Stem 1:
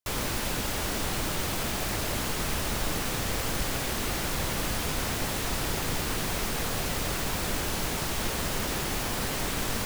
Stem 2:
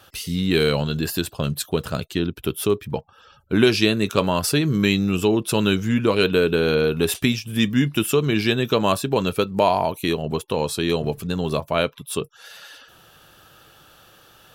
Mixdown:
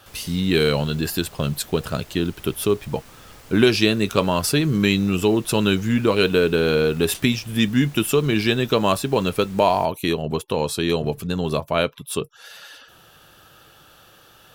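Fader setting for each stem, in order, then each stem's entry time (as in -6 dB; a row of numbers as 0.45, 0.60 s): -16.0, +0.5 dB; 0.00, 0.00 s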